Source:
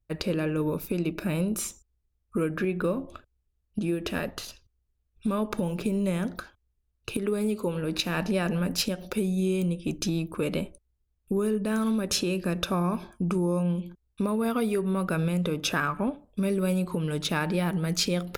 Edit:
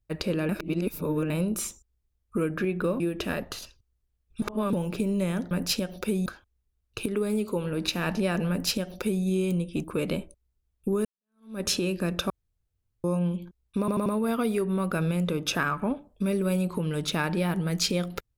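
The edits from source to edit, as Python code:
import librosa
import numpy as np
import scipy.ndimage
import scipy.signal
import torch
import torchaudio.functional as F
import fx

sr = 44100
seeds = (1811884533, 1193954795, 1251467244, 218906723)

y = fx.edit(x, sr, fx.reverse_span(start_s=0.49, length_s=0.81),
    fx.cut(start_s=3.0, length_s=0.86),
    fx.reverse_span(start_s=5.28, length_s=0.31),
    fx.duplicate(start_s=8.6, length_s=0.75, to_s=6.37),
    fx.cut(start_s=9.95, length_s=0.33),
    fx.fade_in_span(start_s=11.49, length_s=0.55, curve='exp'),
    fx.room_tone_fill(start_s=12.74, length_s=0.74),
    fx.stutter(start_s=14.23, slice_s=0.09, count=4), tone=tone)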